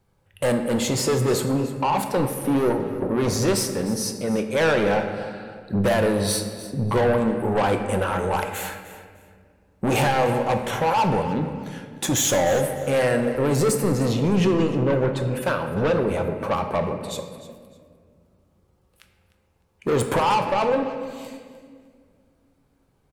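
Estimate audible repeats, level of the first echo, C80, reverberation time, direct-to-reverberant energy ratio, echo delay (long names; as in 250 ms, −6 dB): 2, −15.5 dB, 8.0 dB, 1.9 s, 5.0 dB, 303 ms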